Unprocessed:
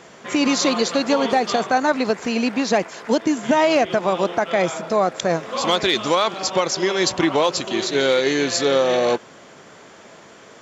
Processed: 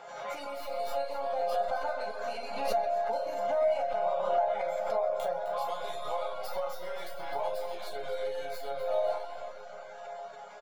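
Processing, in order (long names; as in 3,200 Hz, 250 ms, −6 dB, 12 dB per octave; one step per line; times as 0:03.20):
stylus tracing distortion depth 0.13 ms
resonators tuned to a chord C#3 major, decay 0.63 s
downward compressor 12 to 1, threshold −47 dBFS, peak gain reduction 20 dB
drawn EQ curve 340 Hz 0 dB, 740 Hz +13 dB, 1,900 Hz −1 dB, 4,100 Hz +10 dB, 6,400 Hz +2 dB, 9,100 Hz +9 dB
echo machine with several playback heads 130 ms, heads first and second, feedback 51%, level −14 dB
convolution reverb RT60 1.6 s, pre-delay 59 ms, DRR 4 dB
reverb reduction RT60 0.54 s
flat-topped bell 1,000 Hz +9 dB 2.8 octaves
comb filter 1.4 ms, depth 39%
background raised ahead of every attack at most 46 dB per second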